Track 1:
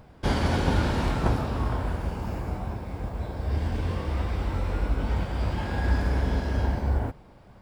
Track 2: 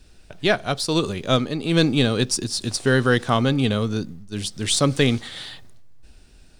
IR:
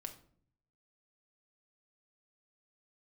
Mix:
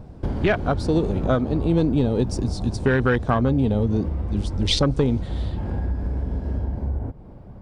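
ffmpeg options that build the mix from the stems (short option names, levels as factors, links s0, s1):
-filter_complex "[0:a]tiltshelf=f=920:g=10,acompressor=threshold=0.0562:ratio=5,volume=1.19[s0];[1:a]afwtdn=0.0708,lowpass=8400,acontrast=53,volume=0.841[s1];[s0][s1]amix=inputs=2:normalize=0,acompressor=threshold=0.158:ratio=4"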